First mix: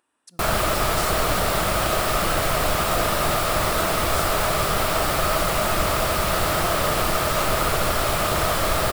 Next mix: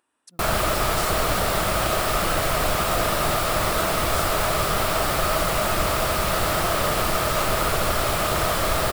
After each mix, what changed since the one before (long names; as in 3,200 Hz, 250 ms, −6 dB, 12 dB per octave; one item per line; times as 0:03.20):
reverb: off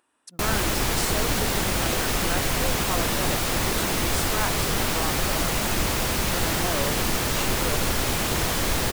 speech +4.0 dB
background: add thirty-one-band graphic EQ 250 Hz +7 dB, 630 Hz −11 dB, 1,250 Hz −11 dB, 6,300 Hz +5 dB